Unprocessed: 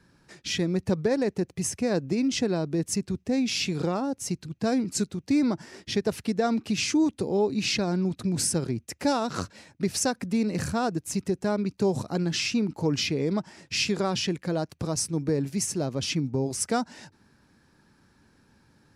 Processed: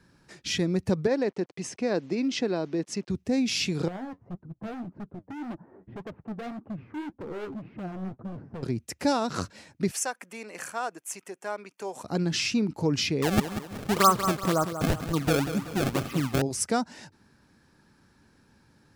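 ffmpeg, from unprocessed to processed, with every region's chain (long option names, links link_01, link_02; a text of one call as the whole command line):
ffmpeg -i in.wav -filter_complex "[0:a]asettb=1/sr,asplit=3[link_01][link_02][link_03];[link_01]atrim=end=1.074[link_04];[link_02]atrim=start=1.07:end=3.1,asetpts=PTS-STARTPTS,afade=type=in:duration=0.004:curve=qsin,afade=type=out:start_time=2.026:duration=0.004:curve=qsin,acrusher=bits=8:mix=0:aa=0.5,highpass=240,lowpass=4800[link_05];[link_03]atrim=start=3.096[link_06];[link_04][link_05]acrossfade=duration=0.004:curve1=hsin:curve2=qsin[link_07];[link_07][link_06]acrossfade=duration=0.004:curve1=qsin:curve2=hsin,asettb=1/sr,asplit=3[link_08][link_09][link_10];[link_08]atrim=end=3.884[link_11];[link_09]atrim=start=3.88:end=8.63,asetpts=PTS-STARTPTS,afade=type=in:duration=0.004:curve=qsin,afade=type=out:start_time=4.746:duration=0.004:curve=qsin,lowpass=frequency=1100:width=0.5412,lowpass=frequency=1100:width=1.3066,asoftclip=type=hard:threshold=-30.5dB,flanger=delay=3.1:depth=8:regen=49:speed=1.8:shape=triangular[link_12];[link_10]atrim=start=8.626[link_13];[link_11][link_12]acrossfade=duration=0.004:curve1=hsin:curve2=qsin[link_14];[link_14][link_13]acrossfade=duration=0.004:curve1=qsin:curve2=hsin,asettb=1/sr,asplit=3[link_15][link_16][link_17];[link_15]atrim=end=9.914[link_18];[link_16]atrim=start=9.91:end=12.04,asetpts=PTS-STARTPTS,afade=type=in:duration=0.004:curve=qsin,afade=type=out:start_time=2.126:duration=0.004:curve=qsin,highpass=760,equalizer=frequency=4900:width_type=o:width=0.52:gain=-9.5,bandreject=frequency=3900:width=6.8[link_19];[link_17]atrim=start=12.036[link_20];[link_18][link_19]acrossfade=duration=0.004:curve1=hsin:curve2=qsin[link_21];[link_21][link_20]acrossfade=duration=0.004:curve1=qsin:curve2=hsin,asettb=1/sr,asplit=3[link_22][link_23][link_24];[link_22]atrim=end=13.224[link_25];[link_23]atrim=start=13.22:end=16.42,asetpts=PTS-STARTPTS,afade=type=in:duration=0.004:curve=qsin,afade=type=out:start_time=3.196:duration=0.004:curve=qsin,lowpass=frequency=1200:width_type=q:width=14,acrusher=samples=26:mix=1:aa=0.000001:lfo=1:lforange=41.6:lforate=2,aecho=1:1:188|376|564|752:0.316|0.133|0.0558|0.0234,atrim=end_sample=141120[link_26];[link_24]atrim=start=16.416[link_27];[link_25][link_26]acrossfade=duration=0.004:curve1=hsin:curve2=qsin[link_28];[link_28][link_27]acrossfade=duration=0.004:curve1=qsin:curve2=hsin" out.wav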